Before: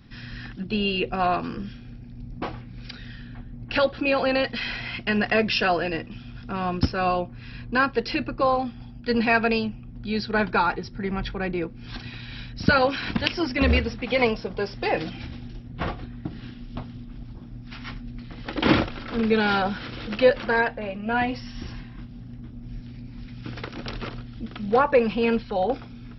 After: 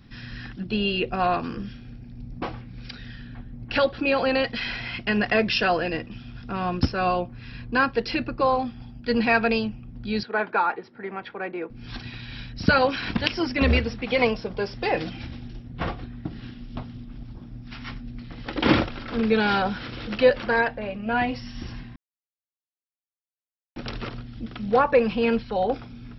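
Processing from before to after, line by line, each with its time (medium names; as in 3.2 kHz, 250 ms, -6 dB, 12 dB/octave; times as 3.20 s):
10.23–11.70 s: band-pass 390–2200 Hz
21.96–23.76 s: mute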